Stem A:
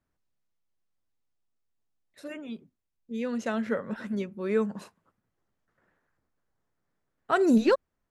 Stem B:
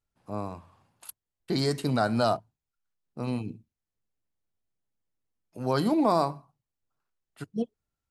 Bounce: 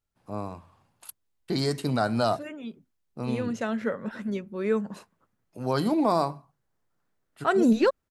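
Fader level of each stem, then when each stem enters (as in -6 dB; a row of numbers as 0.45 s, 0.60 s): +0.5 dB, 0.0 dB; 0.15 s, 0.00 s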